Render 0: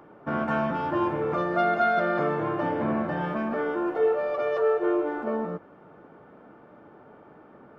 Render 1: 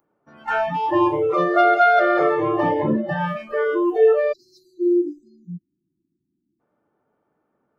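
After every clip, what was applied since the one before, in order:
noise reduction from a noise print of the clip's start 29 dB
time-frequency box erased 0:04.33–0:06.60, 370–3,700 Hz
level +8.5 dB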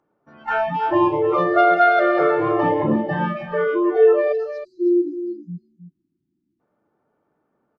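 high-frequency loss of the air 110 metres
single-tap delay 316 ms −10.5 dB
level +1 dB

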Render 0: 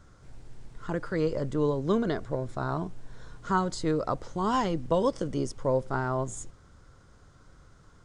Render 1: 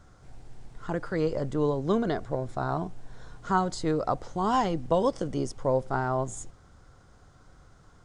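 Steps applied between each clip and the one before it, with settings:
parametric band 750 Hz +7 dB 0.3 octaves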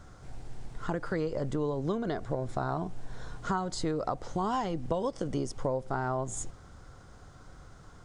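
downward compressor 6 to 1, threshold −32 dBFS, peak gain reduction 12 dB
level +4 dB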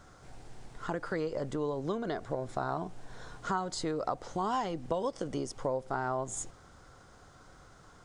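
low-shelf EQ 200 Hz −9 dB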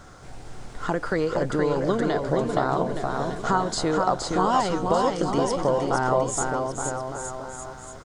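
bouncing-ball delay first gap 470 ms, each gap 0.85×, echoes 5
level +9 dB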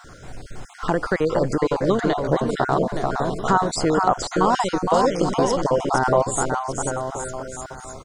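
time-frequency cells dropped at random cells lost 26%
level +4.5 dB

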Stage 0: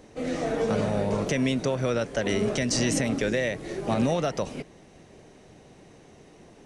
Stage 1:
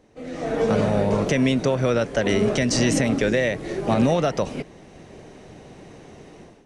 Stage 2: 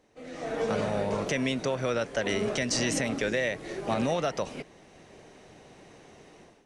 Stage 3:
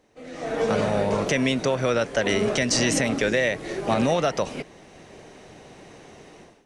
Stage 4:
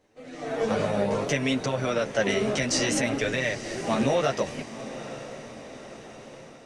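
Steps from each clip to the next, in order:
high-shelf EQ 5,100 Hz −5.5 dB; automatic gain control gain up to 14.5 dB; level −6.5 dB
low-shelf EQ 450 Hz −8 dB; level −4 dB
automatic gain control gain up to 3.5 dB; level +2.5 dB
multi-voice chorus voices 2, 0.59 Hz, delay 11 ms, depth 4.3 ms; feedback delay with all-pass diffusion 905 ms, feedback 52%, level −13.5 dB

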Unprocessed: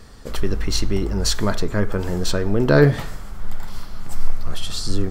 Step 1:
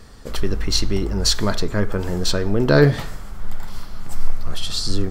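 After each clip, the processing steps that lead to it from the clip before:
dynamic equaliser 4,400 Hz, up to +5 dB, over −40 dBFS, Q 1.4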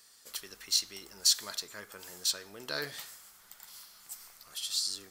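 first difference
level −2.5 dB

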